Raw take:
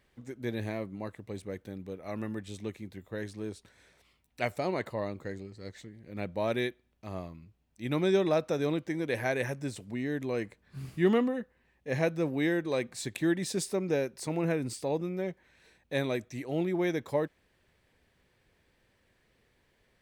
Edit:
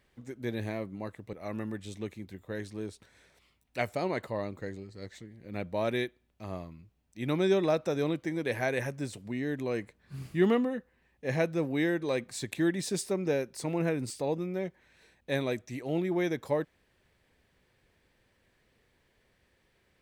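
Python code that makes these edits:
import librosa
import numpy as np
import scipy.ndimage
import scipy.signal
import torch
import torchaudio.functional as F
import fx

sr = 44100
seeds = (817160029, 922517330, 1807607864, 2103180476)

y = fx.edit(x, sr, fx.cut(start_s=1.33, length_s=0.63), tone=tone)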